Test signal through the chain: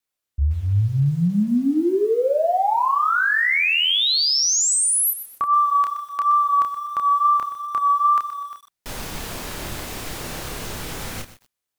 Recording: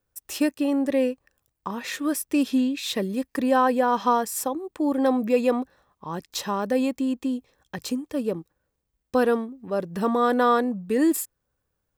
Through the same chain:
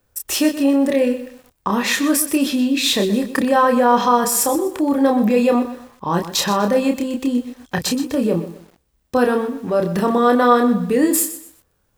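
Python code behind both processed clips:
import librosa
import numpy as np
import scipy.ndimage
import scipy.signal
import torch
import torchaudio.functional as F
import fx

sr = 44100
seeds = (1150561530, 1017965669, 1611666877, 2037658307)

p1 = fx.over_compress(x, sr, threshold_db=-30.0, ratio=-1.0)
p2 = x + F.gain(torch.from_numpy(p1), -1.5).numpy()
p3 = fx.wow_flutter(p2, sr, seeds[0], rate_hz=2.1, depth_cents=25.0)
p4 = fx.doubler(p3, sr, ms=29.0, db=-4.5)
p5 = fx.echo_crushed(p4, sr, ms=124, feedback_pct=35, bits=7, wet_db=-12.5)
y = F.gain(torch.from_numpy(p5), 3.0).numpy()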